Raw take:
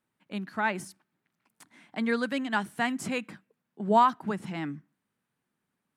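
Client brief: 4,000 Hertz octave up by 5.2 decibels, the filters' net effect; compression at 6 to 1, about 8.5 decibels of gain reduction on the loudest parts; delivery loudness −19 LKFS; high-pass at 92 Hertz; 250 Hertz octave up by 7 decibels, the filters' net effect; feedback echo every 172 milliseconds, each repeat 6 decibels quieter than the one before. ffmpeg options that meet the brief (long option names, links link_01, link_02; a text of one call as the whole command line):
ffmpeg -i in.wav -af "highpass=92,equalizer=frequency=250:width_type=o:gain=8,equalizer=frequency=4000:width_type=o:gain=7,acompressor=threshold=-23dB:ratio=6,aecho=1:1:172|344|516|688|860|1032:0.501|0.251|0.125|0.0626|0.0313|0.0157,volume=10dB" out.wav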